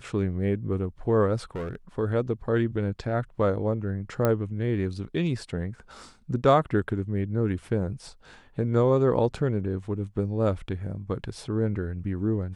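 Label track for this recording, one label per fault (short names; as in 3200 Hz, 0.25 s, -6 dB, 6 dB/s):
1.550000	1.750000	clipped -29 dBFS
4.250000	4.250000	pop -11 dBFS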